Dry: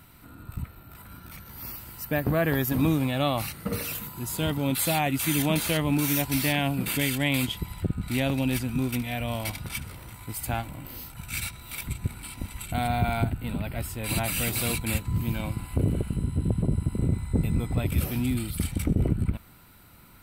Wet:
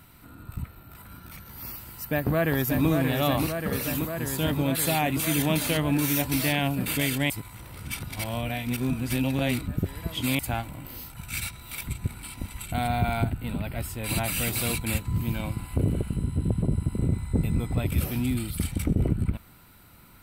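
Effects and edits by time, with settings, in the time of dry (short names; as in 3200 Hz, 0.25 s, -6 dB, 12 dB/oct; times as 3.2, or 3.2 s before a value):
1.92–2.88 echo throw 0.58 s, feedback 80%, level -5 dB
7.3–10.39 reverse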